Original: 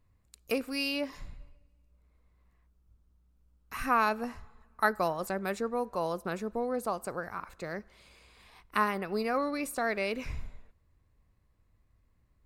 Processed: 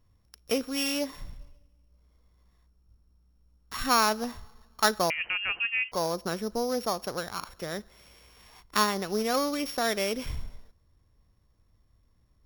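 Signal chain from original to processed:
samples sorted by size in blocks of 8 samples
0:05.10–0:05.92: voice inversion scrambler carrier 3,000 Hz
level +3 dB

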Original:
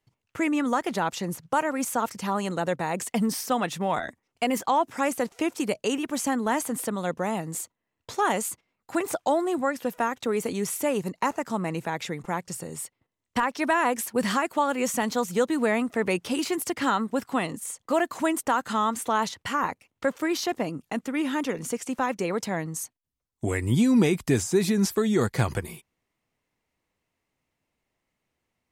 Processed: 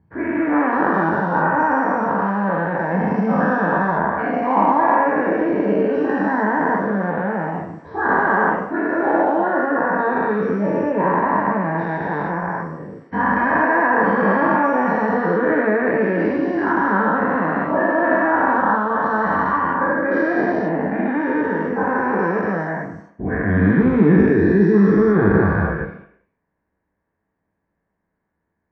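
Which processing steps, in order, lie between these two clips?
every bin's largest magnitude spread in time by 480 ms
in parallel at −11 dB: floating-point word with a short mantissa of 2 bits
on the sum: transistor ladder low-pass 1,900 Hz, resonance 55%
convolution reverb RT60 0.75 s, pre-delay 9 ms, DRR 1.5 dB
level −6 dB

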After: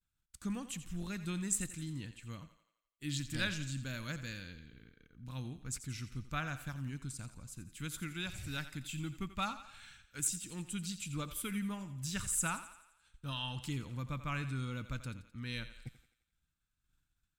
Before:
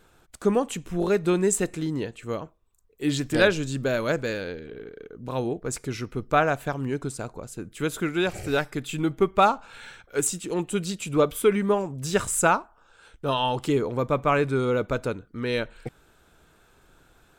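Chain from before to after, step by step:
parametric band 410 Hz −14 dB 0.5 octaves
downward expander −47 dBFS
guitar amp tone stack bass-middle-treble 6-0-2
feedback echo with a high-pass in the loop 86 ms, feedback 52%, high-pass 310 Hz, level −12.5 dB
level +7 dB

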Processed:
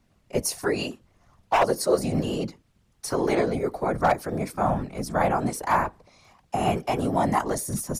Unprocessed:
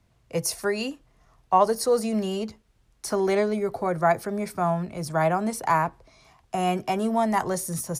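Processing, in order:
wave folding −12 dBFS
random phases in short frames

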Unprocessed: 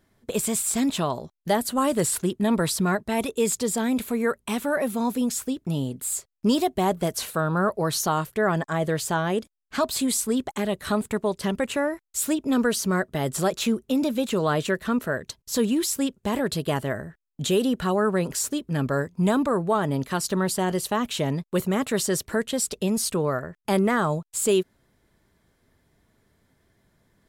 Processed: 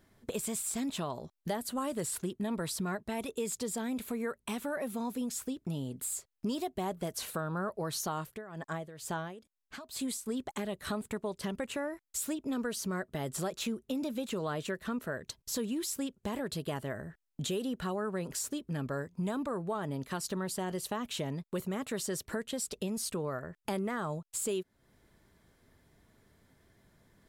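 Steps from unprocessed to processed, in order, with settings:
downward compressor 2.5 to 1, threshold −38 dBFS, peak gain reduction 14 dB
0:08.24–0:10.26: amplitude tremolo 2.2 Hz, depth 80%

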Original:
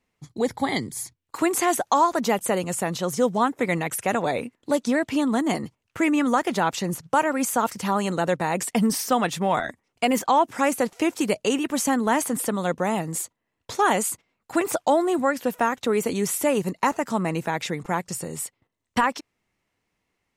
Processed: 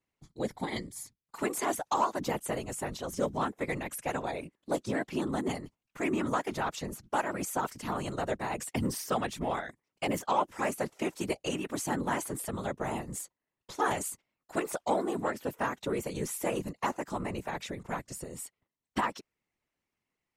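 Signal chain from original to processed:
harmonic generator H 3 −22 dB, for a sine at −8.5 dBFS
random phases in short frames
level −8 dB

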